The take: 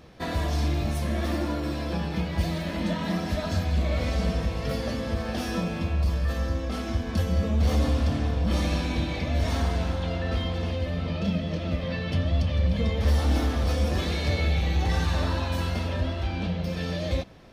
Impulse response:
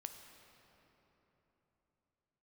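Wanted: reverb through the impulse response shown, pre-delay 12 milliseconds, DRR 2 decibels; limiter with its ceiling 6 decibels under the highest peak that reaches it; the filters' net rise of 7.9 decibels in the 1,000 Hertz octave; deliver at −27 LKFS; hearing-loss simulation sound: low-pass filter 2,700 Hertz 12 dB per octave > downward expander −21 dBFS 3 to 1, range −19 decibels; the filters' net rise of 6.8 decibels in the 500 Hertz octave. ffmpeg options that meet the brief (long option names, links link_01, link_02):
-filter_complex "[0:a]equalizer=frequency=500:width_type=o:gain=5.5,equalizer=frequency=1000:width_type=o:gain=8.5,alimiter=limit=-16.5dB:level=0:latency=1,asplit=2[link_01][link_02];[1:a]atrim=start_sample=2205,adelay=12[link_03];[link_02][link_03]afir=irnorm=-1:irlink=0,volume=2dB[link_04];[link_01][link_04]amix=inputs=2:normalize=0,lowpass=2700,agate=range=-19dB:threshold=-21dB:ratio=3,volume=-3dB"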